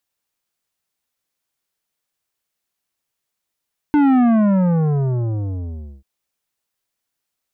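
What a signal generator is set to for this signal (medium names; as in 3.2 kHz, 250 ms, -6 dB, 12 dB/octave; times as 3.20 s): sub drop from 300 Hz, over 2.09 s, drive 11.5 dB, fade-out 1.83 s, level -12 dB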